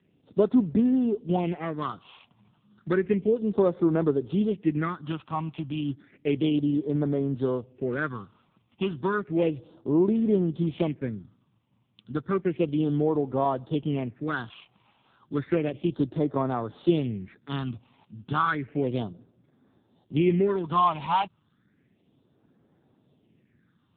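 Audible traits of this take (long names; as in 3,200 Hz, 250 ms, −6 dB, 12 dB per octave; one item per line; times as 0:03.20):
a buzz of ramps at a fixed pitch in blocks of 8 samples
phaser sweep stages 6, 0.32 Hz, lowest notch 440–2,700 Hz
AMR narrowband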